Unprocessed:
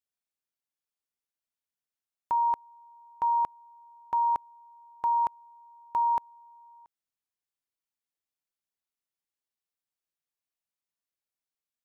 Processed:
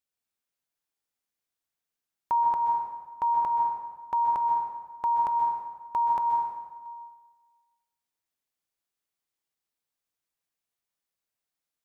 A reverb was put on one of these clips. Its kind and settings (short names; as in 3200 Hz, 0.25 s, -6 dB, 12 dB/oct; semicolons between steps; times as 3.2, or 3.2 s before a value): plate-style reverb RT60 1.4 s, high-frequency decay 0.7×, pre-delay 0.115 s, DRR 0.5 dB; gain +1.5 dB